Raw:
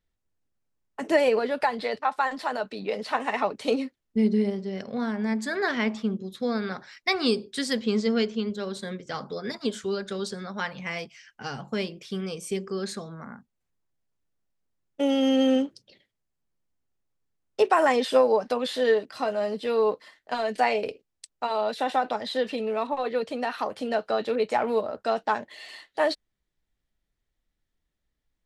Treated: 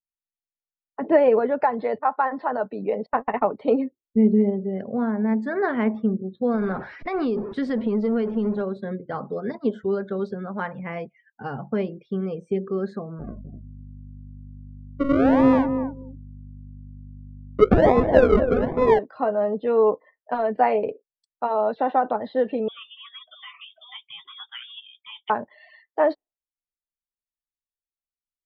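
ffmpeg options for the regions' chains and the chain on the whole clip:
-filter_complex "[0:a]asettb=1/sr,asplit=3[s0][s1][s2];[s0]atrim=end=3.064[s3];[s1]atrim=start=3.06:end=3.46,asetpts=PTS-STARTPTS,afade=t=in:d=0.004:c=qsin,afade=t=out:st=0.396:d=0.004:c=qsin,agate=range=0.0158:threshold=0.0316:ratio=16:release=100:detection=peak,lowshelf=f=130:g=9.5[s4];[s2]atrim=start=3.456[s5];[s3][s4]acrossfade=d=0.004:c1=hsin:c2=qsin[s6];[s6][s5]acrossfade=d=0.004:c1=qsin:c2=hsin,asettb=1/sr,asplit=3[s7][s8][s9];[s7]atrim=end=6.544[s10];[s8]atrim=start=6.54:end=8.62,asetpts=PTS-STARTPTS,afade=t=in:d=0.004:c=qsin,afade=t=out:st=2.076:d=0.004:c=qsin,aeval=exprs='val(0)+0.5*0.0224*sgn(val(0))':c=same,acompressor=threshold=0.0708:ratio=10:attack=3.2:release=140:knee=1:detection=peak[s11];[s9]atrim=start=8.616[s12];[s10][s11]acrossfade=d=0.004:c1=hsin:c2=qsin[s13];[s13][s12]acrossfade=d=0.004:c1=qsin:c2=hsin,asettb=1/sr,asplit=3[s14][s15][s16];[s14]atrim=end=13.194[s17];[s15]atrim=start=13.19:end=18.99,asetpts=PTS-STARTPTS,afade=t=in:d=0.004:c=qsin,afade=t=out:st=5.796:d=0.004:c=qsin,acrusher=samples=41:mix=1:aa=0.000001:lfo=1:lforange=24.6:lforate=1.2,aeval=exprs='val(0)+0.00708*(sin(2*PI*50*n/s)+sin(2*PI*2*50*n/s)/2+sin(2*PI*3*50*n/s)/3+sin(2*PI*4*50*n/s)/4+sin(2*PI*5*50*n/s)/5)':c=same,asplit=2[s18][s19];[s19]adelay=252,lowpass=f=1100:p=1,volume=0.422,asplit=2[s20][s21];[s21]adelay=252,lowpass=f=1100:p=1,volume=0.15[s22];[s18][s20][s22]amix=inputs=3:normalize=0,atrim=end_sample=255780[s23];[s16]atrim=start=18.986[s24];[s17][s23]acrossfade=d=0.004:c1=hsin:c2=qsin[s25];[s25][s24]acrossfade=d=0.004:c1=qsin:c2=hsin,asettb=1/sr,asplit=3[s26][s27][s28];[s26]atrim=end=22.684[s29];[s27]atrim=start=22.68:end=25.3,asetpts=PTS-STARTPTS,afade=t=in:d=0.004:c=qsin,afade=t=out:st=2.616:d=0.004:c=qsin,flanger=delay=2.3:depth=5.6:regen=-51:speed=1.4:shape=triangular,lowpass=f=3200:t=q:w=0.5098,lowpass=f=3200:t=q:w=0.6013,lowpass=f=3200:t=q:w=0.9,lowpass=f=3200:t=q:w=2.563,afreqshift=-3800[s30];[s28]atrim=start=25.296[s31];[s29][s30]acrossfade=d=0.004:c1=hsin:c2=qsin[s32];[s32][s31]acrossfade=d=0.004:c1=qsin:c2=hsin,afftdn=nr=33:nf=-43,lowpass=1200,volume=1.78"

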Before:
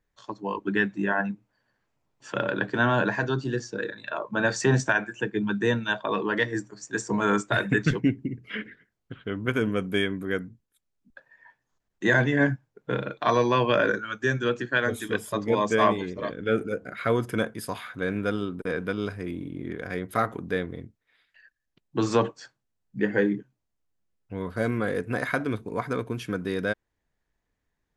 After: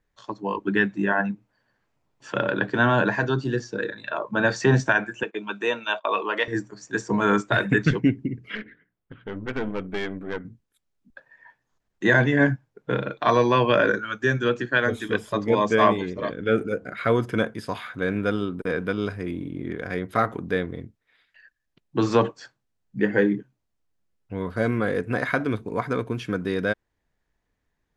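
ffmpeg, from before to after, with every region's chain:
-filter_complex "[0:a]asettb=1/sr,asplit=3[s0][s1][s2];[s0]atrim=end=5.234[s3];[s1]atrim=start=5.23:end=6.48,asetpts=PTS-STARTPTS,afade=t=in:d=0.004:c=qsin,afade=t=out:st=1.246:d=0.004:c=qsin,agate=range=0.158:threshold=0.0126:ratio=16:release=100:detection=peak,highpass=500,equalizer=f=620:t=q:w=4:g=3,equalizer=f=1200:t=q:w=4:g=4,equalizer=f=1700:t=q:w=4:g=-7,equalizer=f=2600:t=q:w=4:g=7,equalizer=f=4800:t=q:w=4:g=-4,lowpass=f=9300:w=0.5412,lowpass=f=9300:w=1.3066[s4];[s2]atrim=start=6.476[s5];[s3][s4]acrossfade=d=0.004:c1=hsin:c2=qsin[s6];[s6][s5]acrossfade=d=0.004:c1=qsin:c2=hsin,asettb=1/sr,asplit=3[s7][s8][s9];[s7]atrim=end=8.554[s10];[s8]atrim=start=8.55:end=10.45,asetpts=PTS-STARTPTS,afade=t=in:d=0.004:c=qsin,afade=t=out:st=1.896:d=0.004:c=qsin,lowpass=2800,bandreject=f=60:t=h:w=6,bandreject=f=120:t=h:w=6,bandreject=f=180:t=h:w=6,bandreject=f=240:t=h:w=6,bandreject=f=300:t=h:w=6,aeval=exprs='(tanh(17.8*val(0)+0.75)-tanh(0.75))/17.8':c=same[s11];[s9]atrim=start=10.446[s12];[s10][s11]acrossfade=d=0.004:c1=hsin:c2=qsin[s13];[s13][s12]acrossfade=d=0.004:c1=qsin:c2=hsin,highshelf=f=9400:g=-8.5,acrossover=split=6400[s14][s15];[s15]acompressor=threshold=0.00141:ratio=4:attack=1:release=60[s16];[s14][s16]amix=inputs=2:normalize=0,volume=1.41"

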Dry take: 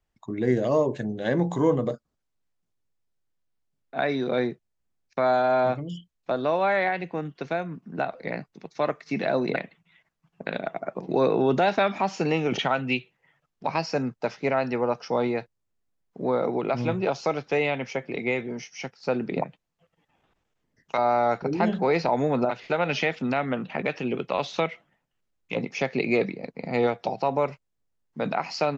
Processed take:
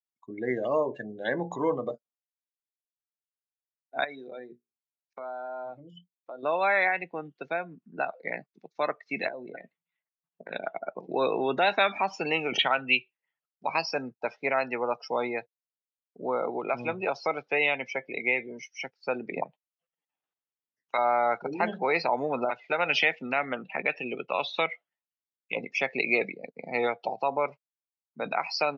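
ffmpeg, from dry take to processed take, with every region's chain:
-filter_complex "[0:a]asettb=1/sr,asplit=3[s0][s1][s2];[s0]atrim=end=4.044[s3];[s1]atrim=start=4.04:end=6.43,asetpts=PTS-STARTPTS,afade=t=in:d=0.004:c=qsin,afade=t=out:st=2.386:d=0.004:c=qsin,acompressor=threshold=0.0178:ratio=3:attack=3.2:release=140:knee=1:detection=peak,bandreject=f=60:t=h:w=6,bandreject=f=120:t=h:w=6,bandreject=f=180:t=h:w=6,bandreject=f=240:t=h:w=6,bandreject=f=300:t=h:w=6,bandreject=f=360:t=h:w=6,bandreject=f=420:t=h:w=6,bandreject=f=480:t=h:w=6,bandreject=f=540:t=h:w=6[s4];[s2]atrim=start=6.426[s5];[s3][s4]acrossfade=d=0.004:c1=hsin:c2=qsin[s6];[s6][s5]acrossfade=d=0.004:c1=qsin:c2=hsin,asettb=1/sr,asplit=3[s7][s8][s9];[s7]atrim=end=9.284[s10];[s8]atrim=start=9.28:end=10.5,asetpts=PTS-STARTPTS,afade=t=in:d=0.004:c=qsin,afade=t=out:st=1.216:d=0.004:c=qsin,highshelf=f=2200:g=-10,acompressor=threshold=0.0316:ratio=12:attack=3.2:release=140:knee=1:detection=peak,asplit=2[s11][s12];[s12]adelay=17,volume=0.251[s13];[s11][s13]amix=inputs=2:normalize=0,atrim=end_sample=53802[s14];[s9]atrim=start=10.496[s15];[s10][s14]acrossfade=d=0.004:c1=hsin:c2=qsin[s16];[s16][s15]acrossfade=d=0.004:c1=qsin:c2=hsin,afftdn=nr=23:nf=-36,highpass=f=710:p=1,adynamicequalizer=threshold=0.00562:dfrequency=3100:dqfactor=0.76:tfrequency=3100:tqfactor=0.76:attack=5:release=100:ratio=0.375:range=3:mode=boostabove:tftype=bell"

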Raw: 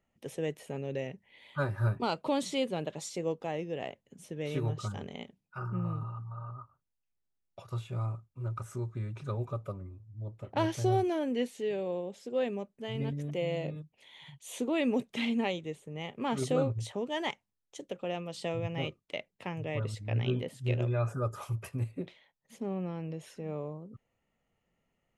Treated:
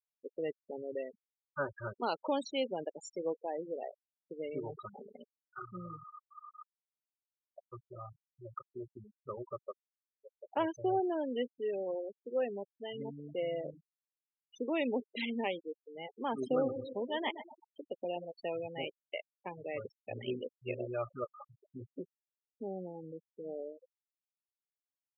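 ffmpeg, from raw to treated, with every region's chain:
-filter_complex "[0:a]asettb=1/sr,asplit=3[s0][s1][s2];[s0]atrim=end=16.344[s3];[s1]atrim=start=16.34:end=18.25,asetpts=PTS-STARTPTS,afade=t=in:d=0.004:c=qsin,afade=t=out:st=1.906:d=0.004:c=qsin,equalizer=f=250:w=3.8:g=4.5,aecho=1:1:125|250|375|500|625|750|875:0.316|0.187|0.11|0.0649|0.0383|0.0226|0.0133,atrim=end_sample=84231[s4];[s2]atrim=start=18.246[s5];[s3][s4]acrossfade=d=0.004:c1=hsin:c2=qsin[s6];[s6][s5]acrossfade=d=0.004:c1=qsin:c2=hsin,asettb=1/sr,asplit=3[s7][s8][s9];[s7]atrim=end=21.244[s10];[s8]atrim=start=21.24:end=21.76,asetpts=PTS-STARTPTS,afade=t=in:d=0.004:c=qsin,afade=t=out:st=0.516:d=0.004:c=qsin,lowpass=1200,acompressor=threshold=0.0178:ratio=12:attack=3.2:release=140:knee=1:detection=peak[s11];[s9]atrim=start=21.756[s12];[s10][s11]acrossfade=d=0.004:c1=hsin:c2=qsin[s13];[s13][s12]acrossfade=d=0.004:c1=qsin:c2=hsin,highpass=300,afftfilt=real='re*gte(hypot(re,im),0.0251)':imag='im*gte(hypot(re,im),0.0251)':win_size=1024:overlap=0.75,volume=0.841"

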